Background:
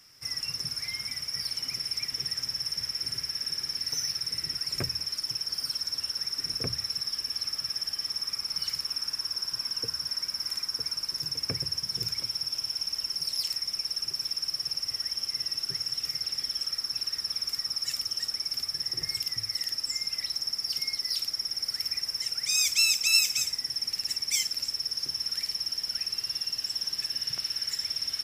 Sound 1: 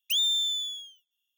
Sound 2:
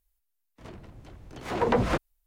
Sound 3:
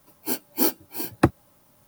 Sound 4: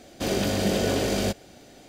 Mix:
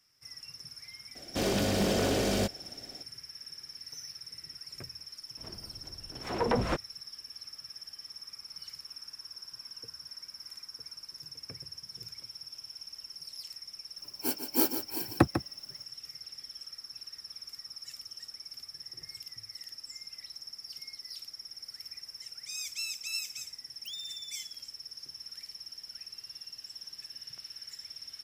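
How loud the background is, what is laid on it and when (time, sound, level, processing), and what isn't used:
background -13.5 dB
1.15 add 4 -3 dB + wavefolder -18.5 dBFS
4.79 add 2 -4.5 dB
13.97 add 3 -5 dB + echo 0.148 s -9 dB
23.75 add 1 -17.5 dB

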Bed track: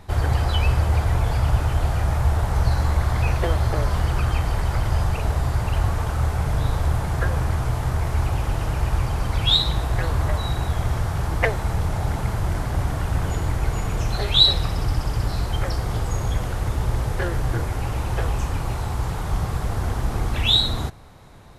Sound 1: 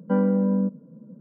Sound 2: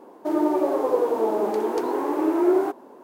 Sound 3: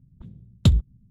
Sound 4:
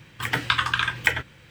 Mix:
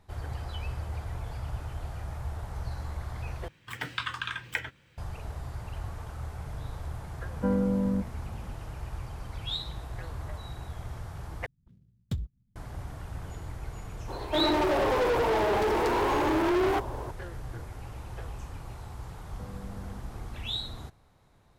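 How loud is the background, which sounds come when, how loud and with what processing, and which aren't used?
bed track -16 dB
3.48 replace with 4 -11 dB
7.33 add 1 -5.5 dB
11.46 replace with 3 -15.5 dB + switching dead time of 0.14 ms
14.08 add 2 -11 dB + overdrive pedal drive 29 dB, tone 6100 Hz, clips at -8 dBFS
19.3 add 1 -14.5 dB + compressor, threshold -29 dBFS

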